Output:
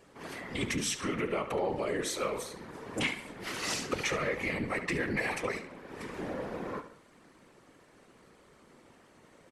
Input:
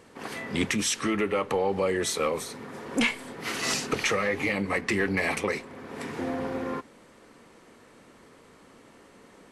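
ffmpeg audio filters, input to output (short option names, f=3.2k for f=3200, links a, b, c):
-filter_complex "[0:a]asplit=2[a][b];[b]adelay=71,lowpass=f=4.6k:p=1,volume=-10dB,asplit=2[c][d];[d]adelay=71,lowpass=f=4.6k:p=1,volume=0.46,asplit=2[e][f];[f]adelay=71,lowpass=f=4.6k:p=1,volume=0.46,asplit=2[g][h];[h]adelay=71,lowpass=f=4.6k:p=1,volume=0.46,asplit=2[i][j];[j]adelay=71,lowpass=f=4.6k:p=1,volume=0.46[k];[a][c][e][g][i][k]amix=inputs=6:normalize=0,afftfilt=real='hypot(re,im)*cos(2*PI*random(0))':imag='hypot(re,im)*sin(2*PI*random(1))':win_size=512:overlap=0.75"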